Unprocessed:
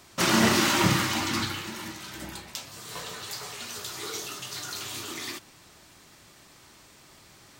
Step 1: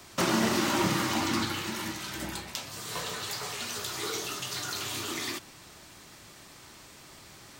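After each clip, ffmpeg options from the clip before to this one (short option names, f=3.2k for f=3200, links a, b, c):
-filter_complex "[0:a]acrossover=split=170|1100|3700[a][b][c][d];[a]acompressor=threshold=-44dB:ratio=4[e];[b]acompressor=threshold=-29dB:ratio=4[f];[c]acompressor=threshold=-39dB:ratio=4[g];[d]acompressor=threshold=-39dB:ratio=4[h];[e][f][g][h]amix=inputs=4:normalize=0,volume=3dB"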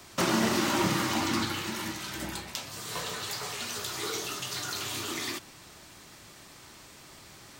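-af anull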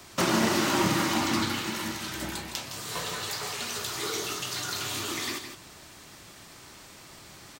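-af "aecho=1:1:162:0.355,volume=1.5dB"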